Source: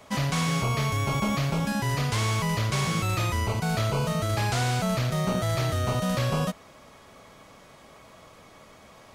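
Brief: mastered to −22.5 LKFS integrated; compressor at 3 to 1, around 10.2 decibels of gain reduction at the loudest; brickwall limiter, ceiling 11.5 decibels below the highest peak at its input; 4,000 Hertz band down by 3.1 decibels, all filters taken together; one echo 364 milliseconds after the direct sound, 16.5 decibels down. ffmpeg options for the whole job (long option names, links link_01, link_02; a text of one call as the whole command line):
ffmpeg -i in.wav -af "equalizer=frequency=4000:width_type=o:gain=-4,acompressor=threshold=-37dB:ratio=3,alimiter=level_in=11.5dB:limit=-24dB:level=0:latency=1,volume=-11.5dB,aecho=1:1:364:0.15,volume=22dB" out.wav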